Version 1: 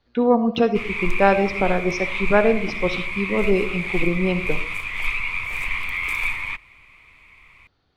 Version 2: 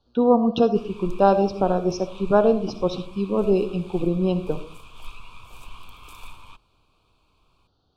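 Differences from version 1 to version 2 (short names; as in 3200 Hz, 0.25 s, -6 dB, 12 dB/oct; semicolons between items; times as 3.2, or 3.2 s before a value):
background -9.0 dB; master: add Butterworth band-stop 2000 Hz, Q 1.1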